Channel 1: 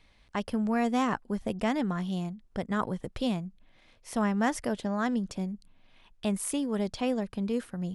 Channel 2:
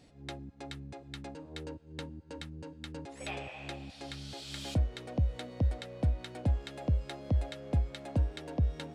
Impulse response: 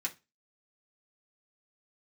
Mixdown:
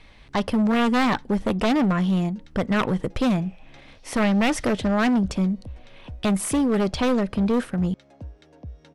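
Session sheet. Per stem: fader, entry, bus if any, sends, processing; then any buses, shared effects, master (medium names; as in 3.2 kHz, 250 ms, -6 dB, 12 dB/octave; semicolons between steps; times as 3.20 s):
-2.0 dB, 0.00 s, send -17 dB, sine folder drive 11 dB, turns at -13 dBFS
-9.5 dB, 0.05 s, no send, peaking EQ 5.8 kHz +9.5 dB 0.39 oct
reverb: on, RT60 0.25 s, pre-delay 3 ms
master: treble shelf 5.3 kHz -10 dB; overload inside the chain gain 17 dB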